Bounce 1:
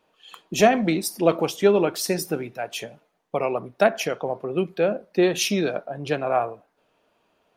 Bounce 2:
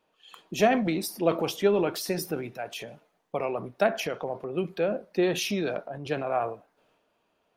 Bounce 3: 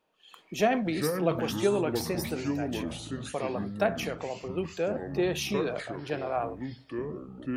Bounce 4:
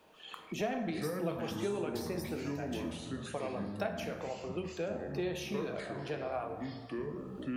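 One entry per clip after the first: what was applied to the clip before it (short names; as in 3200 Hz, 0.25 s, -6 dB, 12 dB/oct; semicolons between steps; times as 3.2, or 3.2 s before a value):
dynamic EQ 7600 Hz, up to -6 dB, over -46 dBFS, Q 1.5; transient shaper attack +1 dB, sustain +6 dB; gain -6 dB
echoes that change speed 0.147 s, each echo -6 st, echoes 3, each echo -6 dB; gain -3 dB
plate-style reverb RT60 1 s, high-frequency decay 0.6×, DRR 5 dB; three-band squash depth 70%; gain -9 dB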